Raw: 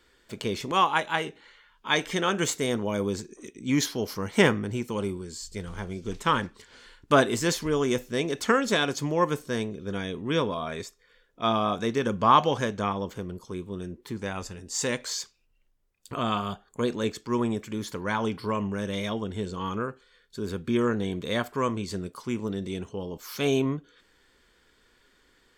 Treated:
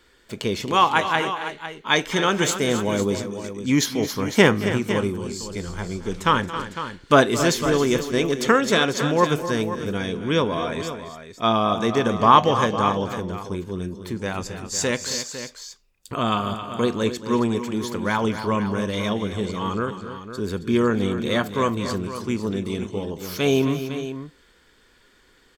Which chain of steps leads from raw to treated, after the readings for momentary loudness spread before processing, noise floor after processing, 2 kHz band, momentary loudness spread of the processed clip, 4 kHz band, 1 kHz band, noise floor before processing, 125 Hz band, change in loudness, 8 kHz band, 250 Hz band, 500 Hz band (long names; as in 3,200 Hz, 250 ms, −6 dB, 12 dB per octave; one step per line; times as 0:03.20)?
14 LU, −57 dBFS, +5.5 dB, 13 LU, +5.5 dB, +5.5 dB, −65 dBFS, +5.5 dB, +5.5 dB, +5.0 dB, +5.5 dB, +5.5 dB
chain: dynamic equaliser 8,600 Hz, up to −5 dB, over −57 dBFS, Q 6.8
on a send: multi-tap delay 224/270/504 ms −16.5/−11.5/−11.5 dB
on the sum: level +5 dB